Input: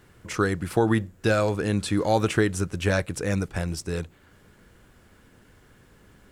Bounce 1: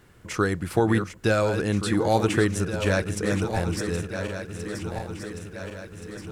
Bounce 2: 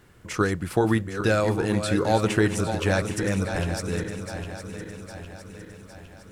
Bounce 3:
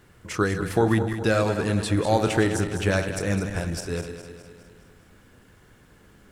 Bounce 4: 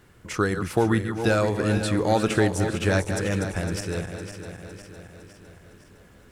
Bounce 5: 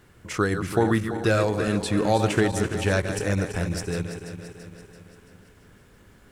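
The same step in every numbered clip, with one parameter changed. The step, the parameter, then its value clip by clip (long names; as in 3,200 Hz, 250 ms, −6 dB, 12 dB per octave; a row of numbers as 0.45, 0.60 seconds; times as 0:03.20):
feedback delay that plays each chunk backwards, delay time: 713, 404, 103, 254, 168 milliseconds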